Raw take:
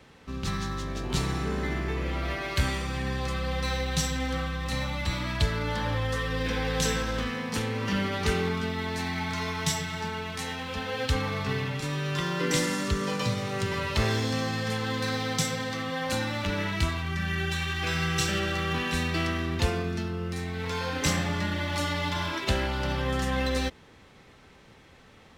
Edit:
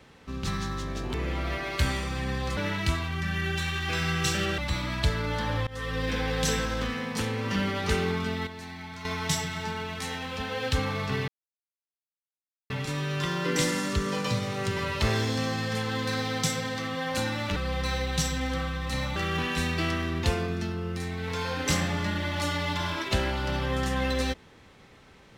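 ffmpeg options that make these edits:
-filter_complex "[0:a]asplit=10[a][b][c][d][e][f][g][h][i][j];[a]atrim=end=1.142[k];[b]atrim=start=1.918:end=3.352[l];[c]atrim=start=16.508:end=18.522[m];[d]atrim=start=4.948:end=6.04,asetpts=PTS-STARTPTS,afade=t=out:st=1.088:d=0.004:c=hsin:silence=0.0668344[n];[e]atrim=start=6.04:end=8.842,asetpts=PTS-STARTPTS,afade=t=in:d=0.37:c=qsin:silence=0.0668344[o];[f]atrim=start=8.838:end=9.422,asetpts=PTS-STARTPTS,volume=-9.5dB[p];[g]atrim=start=9.418:end=11.65,asetpts=PTS-STARTPTS,afade=t=out:st=2.228:d=0.004:c=hsin,apad=pad_dur=1.42[q];[h]atrim=start=11.65:end=16.512,asetpts=PTS-STARTPTS,afade=t=in:d=0.004:c=hsin[r];[i]atrim=start=3.348:end=4.952[s];[j]atrim=start=18.518[t];[k][l]acrossfade=d=0.004:c1=hsin:c2=hsin[u];[u][m]acrossfade=d=0.004:c1=hsin:c2=hsin[v];[n][o]concat=n=2:v=0:a=1[w];[v][w]acrossfade=d=0.004:c1=hsin:c2=hsin[x];[x][p]acrossfade=d=0.004:c1=hsin:c2=hsin[y];[q][r]concat=n=2:v=0:a=1[z];[y][z]acrossfade=d=0.004:c1=hsin:c2=hsin[aa];[aa][s]acrossfade=d=0.004:c1=hsin:c2=hsin[ab];[ab][t]acrossfade=d=0.004:c1=hsin:c2=hsin"

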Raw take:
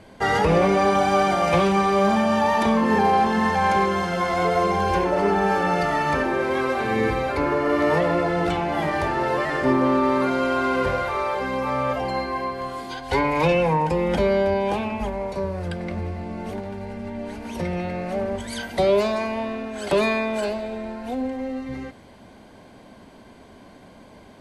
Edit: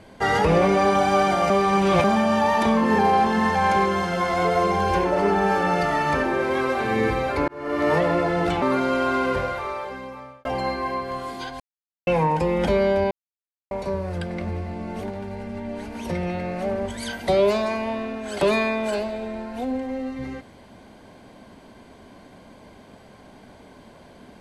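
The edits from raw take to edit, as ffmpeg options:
-filter_complex "[0:a]asplit=10[a][b][c][d][e][f][g][h][i][j];[a]atrim=end=1.502[k];[b]atrim=start=1.498:end=2.042,asetpts=PTS-STARTPTS,areverse[l];[c]atrim=start=2.038:end=7.48,asetpts=PTS-STARTPTS,afade=t=out:st=5.438:d=0.004:c=hsin[m];[d]atrim=start=7.48:end=8.622,asetpts=PTS-STARTPTS,afade=t=in:d=0.42[n];[e]atrim=start=10.118:end=11.95,asetpts=PTS-STARTPTS,afade=t=out:st=0.532:d=1.3[o];[f]atrim=start=11.95:end=13.1,asetpts=PTS-STARTPTS,afade=t=in:d=0.004:c=hsin,afade=t=out:st=1.146:d=0.004:c=hsin[p];[g]atrim=start=13.1:end=13.57,asetpts=PTS-STARTPTS,volume=0[q];[h]atrim=start=13.57:end=14.61,asetpts=PTS-STARTPTS,afade=t=in:d=0.004:c=hsin,afade=t=out:st=1.036:d=0.004:c=hsin[r];[i]atrim=start=14.61:end=15.21,asetpts=PTS-STARTPTS,volume=0[s];[j]atrim=start=15.21,asetpts=PTS-STARTPTS,afade=t=in:d=0.004:c=hsin[t];[k][l]acrossfade=d=0.004:c1=hsin:c2=hsin[u];[m][n]concat=n=2:v=0:a=1[v];[u][v]acrossfade=d=0.004:c1=hsin:c2=hsin[w];[o][p][q][r][s][t]concat=n=6:v=0:a=1[x];[w][x]acrossfade=d=0.004:c1=hsin:c2=hsin"

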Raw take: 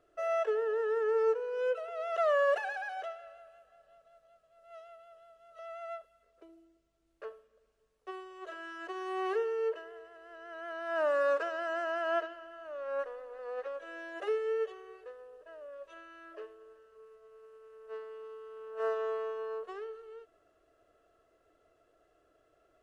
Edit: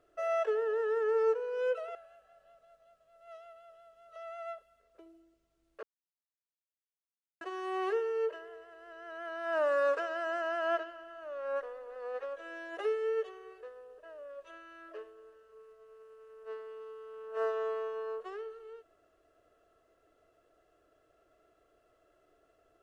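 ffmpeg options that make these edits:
-filter_complex "[0:a]asplit=4[a][b][c][d];[a]atrim=end=1.952[e];[b]atrim=start=3.378:end=7.26,asetpts=PTS-STARTPTS,afade=t=out:st=3.878:d=0.004:c=hsin[f];[c]atrim=start=7.26:end=8.84,asetpts=PTS-STARTPTS,volume=0[g];[d]atrim=start=8.84,asetpts=PTS-STARTPTS,afade=t=in:d=0.004:c=hsin[h];[f][g][h]concat=n=3:v=0:a=1[i];[e][i]acrossfade=d=0.004:c1=hsin:c2=hsin"

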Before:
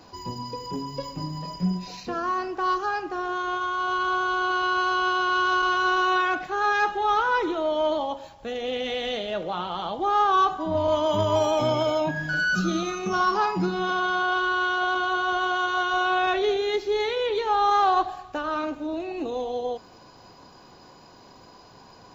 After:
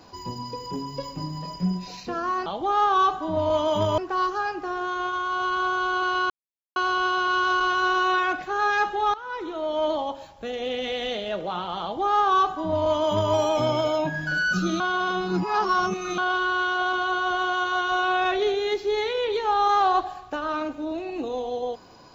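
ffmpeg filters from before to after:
-filter_complex "[0:a]asplit=7[a][b][c][d][e][f][g];[a]atrim=end=2.462[h];[b]atrim=start=9.838:end=11.362[i];[c]atrim=start=2.458:end=4.78,asetpts=PTS-STARTPTS,afade=t=out:st=2.318:d=0.004:c=hsin,apad=pad_dur=0.46[j];[d]atrim=start=4.78:end=7.16,asetpts=PTS-STARTPTS,afade=t=in:d=0.004:c=hsin,afade=t=out:st=2.376:d=0.004:c=hsin:silence=0.1[k];[e]atrim=start=7.16:end=12.822,asetpts=PTS-STARTPTS,afade=t=in:d=0.75:silence=0.1[l];[f]atrim=start=12.818:end=14.202,asetpts=PTS-STARTPTS,areverse[m];[g]atrim=start=14.198[n];[h][i]acrossfade=d=0.004:c1=hsin:c2=hsin[o];[j][k][l]concat=n=3:v=0:a=1[p];[o][p]acrossfade=d=0.004:c1=hsin:c2=hsin[q];[q][m]acrossfade=d=0.004:c1=hsin:c2=hsin[r];[r][n]acrossfade=d=0.004:c1=hsin:c2=hsin"

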